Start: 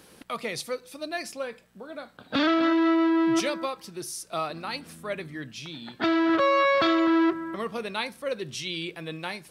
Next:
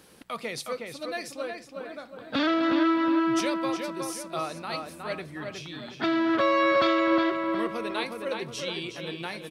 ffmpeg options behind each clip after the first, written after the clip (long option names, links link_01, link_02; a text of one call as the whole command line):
ffmpeg -i in.wav -filter_complex "[0:a]asplit=2[link_01][link_02];[link_02]adelay=364,lowpass=frequency=3100:poles=1,volume=-4dB,asplit=2[link_03][link_04];[link_04]adelay=364,lowpass=frequency=3100:poles=1,volume=0.46,asplit=2[link_05][link_06];[link_06]adelay=364,lowpass=frequency=3100:poles=1,volume=0.46,asplit=2[link_07][link_08];[link_08]adelay=364,lowpass=frequency=3100:poles=1,volume=0.46,asplit=2[link_09][link_10];[link_10]adelay=364,lowpass=frequency=3100:poles=1,volume=0.46,asplit=2[link_11][link_12];[link_12]adelay=364,lowpass=frequency=3100:poles=1,volume=0.46[link_13];[link_01][link_03][link_05][link_07][link_09][link_11][link_13]amix=inputs=7:normalize=0,volume=-2dB" out.wav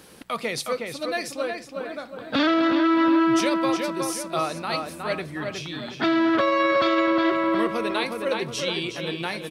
ffmpeg -i in.wav -af "alimiter=limit=-19dB:level=0:latency=1:release=32,volume=6dB" out.wav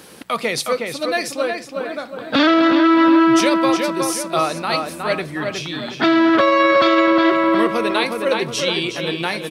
ffmpeg -i in.wav -af "highpass=frequency=120:poles=1,volume=7dB" out.wav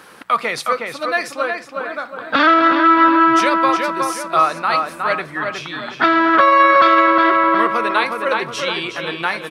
ffmpeg -i in.wav -af "equalizer=frequency=1300:width=0.78:gain=14,volume=-6.5dB" out.wav